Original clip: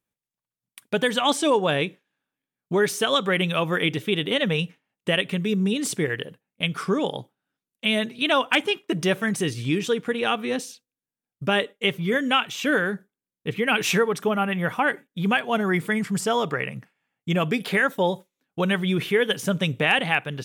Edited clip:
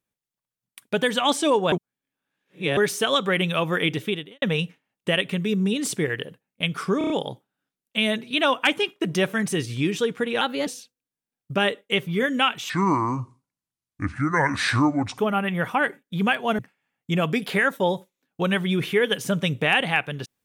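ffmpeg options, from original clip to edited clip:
-filter_complex "[0:a]asplit=13[a][b][c][d][e][f][g][h][i][j][k][l][m];[a]atrim=end=1.722[n];[b]atrim=start=1.718:end=2.772,asetpts=PTS-STARTPTS,areverse[o];[c]atrim=start=2.768:end=4.42,asetpts=PTS-STARTPTS,afade=t=out:st=1.302:d=0.35:c=qua[p];[d]atrim=start=4.42:end=7.012,asetpts=PTS-STARTPTS,afade=t=in:d=0.004:c=hsin[q];[e]atrim=start=6.978:end=7.012[r];[f]atrim=start=6.978:end=7.012[s];[g]atrim=start=6.978:end=7.012[t];[h]atrim=start=6.978:end=10.294[u];[i]atrim=start=10.29:end=10.58,asetpts=PTS-STARTPTS,asetrate=50274,aresample=44100,atrim=end_sample=11218,asetpts=PTS-STARTPTS[v];[j]atrim=start=10.576:end=12.614[w];[k]atrim=start=12.61:end=14.23,asetpts=PTS-STARTPTS,asetrate=28665,aresample=44100[x];[l]atrim=start=14.226:end=15.632[y];[m]atrim=start=16.768[z];[n][o]acrossfade=d=0.004:c1=hsin:c2=hsin[aa];[p][q]concat=n=2:v=0:a=1[ab];[aa][ab]acrossfade=d=0.004:c1=hsin:c2=hsin[ac];[ac][r]acrossfade=d=0.004:c1=hsin:c2=hsin[ad];[ad][s]acrossfade=d=0.004:c1=hsin:c2=hsin[ae];[ae][t]acrossfade=d=0.004:c1=hsin:c2=hsin[af];[af][u]acrossfade=d=0.004:c1=hsin:c2=hsin[ag];[ag][v]acrossfade=d=0.004:c1=hsin:c2=hsin[ah];[ah][w]acrossfade=d=0.004:c1=hsin:c2=hsin[ai];[ai][x]acrossfade=d=0.004:c1=hsin:c2=hsin[aj];[aj][y]acrossfade=d=0.004:c1=hsin:c2=hsin[ak];[ak][z]acrossfade=d=0.004:c1=hsin:c2=hsin"

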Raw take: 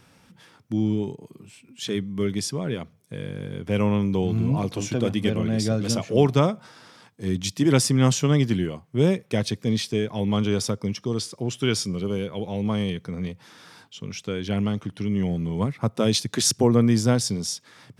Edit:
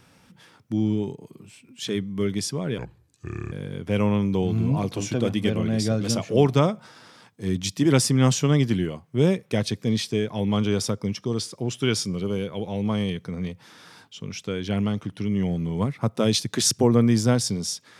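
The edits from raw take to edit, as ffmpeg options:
-filter_complex "[0:a]asplit=3[a][b][c];[a]atrim=end=2.784[d];[b]atrim=start=2.78:end=3.32,asetpts=PTS-STARTPTS,asetrate=32193,aresample=44100[e];[c]atrim=start=3.316[f];[d][e]acrossfade=d=0.004:c1=hsin:c2=hsin[g];[g][f]acrossfade=d=0.004:c1=hsin:c2=hsin"

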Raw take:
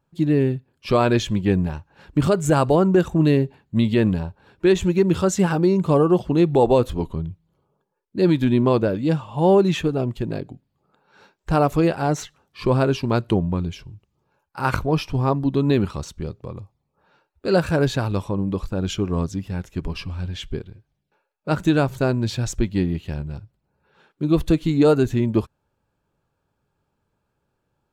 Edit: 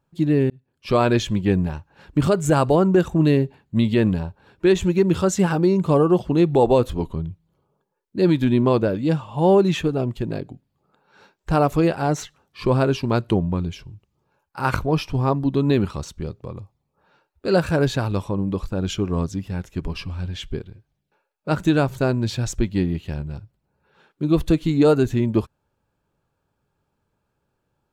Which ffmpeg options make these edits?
-filter_complex "[0:a]asplit=2[a][b];[a]atrim=end=0.5,asetpts=PTS-STARTPTS,afade=t=out:st=0.496:d=0.004:c=hsin[c];[b]atrim=start=0.5,asetpts=PTS-STARTPTS,afade=t=in:d=0.47[d];[c][d]concat=n=2:v=0:a=1"

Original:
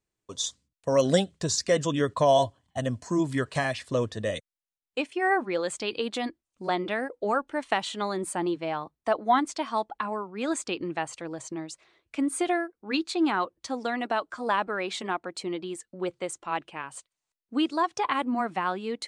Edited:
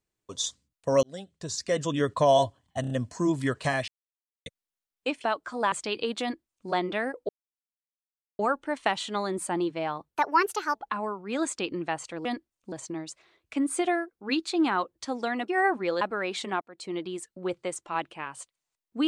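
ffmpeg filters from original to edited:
-filter_complex "[0:a]asplit=17[a][b][c][d][e][f][g][h][i][j][k][l][m][n][o][p][q];[a]atrim=end=1.03,asetpts=PTS-STARTPTS,afade=t=out:st=1.026:d=0.004:c=hsin[r];[b]atrim=start=1.03:end=2.842,asetpts=PTS-STARTPTS,afade=t=in:d=1.05[s];[c]atrim=start=2.808:end=2.842[t];[d]atrim=start=2.808:end=2.842[u];[e]atrim=start=2.808:end=3.79,asetpts=PTS-STARTPTS,afade=t=out:st=0.978:d=0.004:c=hsin[v];[f]atrim=start=3.79:end=4.37,asetpts=PTS-STARTPTS,volume=0[w];[g]atrim=start=4.37:end=5.152,asetpts=PTS-STARTPTS,afade=t=in:d=0.004:c=hsin[x];[h]atrim=start=14.098:end=14.582[y];[i]atrim=start=5.678:end=7.25,asetpts=PTS-STARTPTS,afade=t=out:st=1.568:d=0.004:c=hsin,apad=pad_dur=1.1[z];[j]atrim=start=7.25:end=8.964,asetpts=PTS-STARTPTS,afade=t=in:d=0.004:c=hsin[aa];[k]atrim=start=8.96:end=9.84,asetpts=PTS-STARTPTS,asetrate=59535,aresample=44100[ab];[l]atrim=start=9.836:end=11.342[ac];[m]atrim=start=6.178:end=6.652[ad];[n]atrim=start=11.338:end=14.102[ae];[o]atrim=start=5.148:end=5.682[af];[p]atrim=start=14.578:end=15.18,asetpts=PTS-STARTPTS,afade=t=out:st=0.598:d=0.004:c=hsin[ag];[q]atrim=start=15.18,asetpts=PTS-STARTPTS,afade=t=in:d=0.37[ah];[r][s]concat=n=2:v=0:a=1[ai];[ai][t]acrossfade=d=0.004:c1=hsin:c2=hsin[aj];[aj][u]acrossfade=d=0.004:c1=hsin:c2=hsin[ak];[v][w][x]concat=n=3:v=0:a=1[al];[ak][al]acrossfade=d=0.004:c1=hsin:c2=hsin[am];[am][y]acrossfade=d=0.004:c1=hsin:c2=hsin[an];[z][aa]concat=n=2:v=0:a=1[ao];[an][ao]acrossfade=d=0.004:c1=hsin:c2=hsin[ap];[ap][ab]acrossfade=d=0.004:c1=hsin:c2=hsin[aq];[aq][ac]acrossfade=d=0.004:c1=hsin:c2=hsin[ar];[ar][ad]acrossfade=d=0.004:c1=hsin:c2=hsin[as];[as][ae]acrossfade=d=0.004:c1=hsin:c2=hsin[at];[at][af]acrossfade=d=0.004:c1=hsin:c2=hsin[au];[ag][ah]concat=n=2:v=0:a=1[av];[au][av]acrossfade=d=0.004:c1=hsin:c2=hsin"

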